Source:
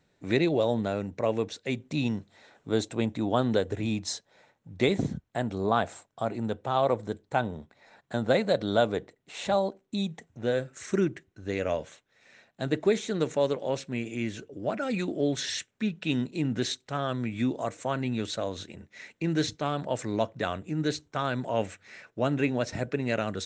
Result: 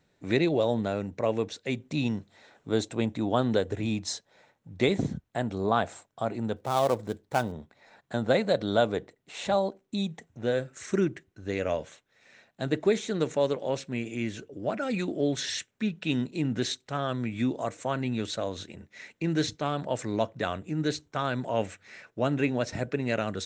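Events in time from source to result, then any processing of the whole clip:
6.56–7.52 s: dead-time distortion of 0.09 ms

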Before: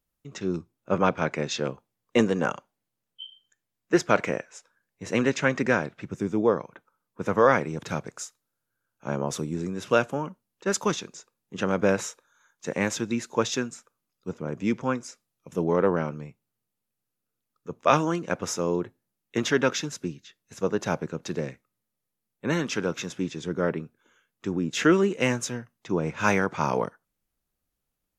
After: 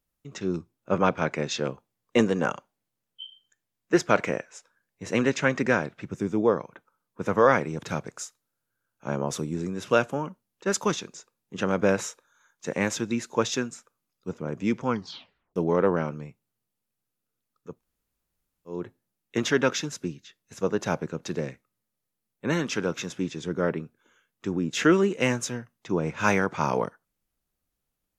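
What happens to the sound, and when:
14.87 s: tape stop 0.69 s
17.72–18.77 s: room tone, crossfade 0.24 s

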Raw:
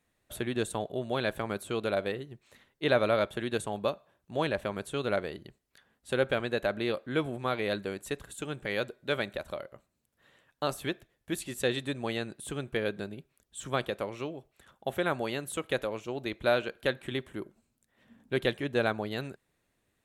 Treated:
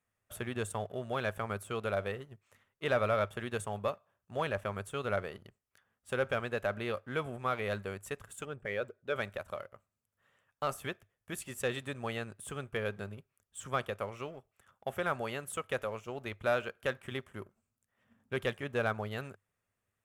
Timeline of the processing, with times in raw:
8.45–9.16 s: resonances exaggerated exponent 1.5
whole clip: bass shelf 200 Hz -4 dB; waveshaping leveller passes 1; graphic EQ with 31 bands 100 Hz +11 dB, 315 Hz -10 dB, 1.25 kHz +6 dB, 4 kHz -10 dB; trim -6.5 dB

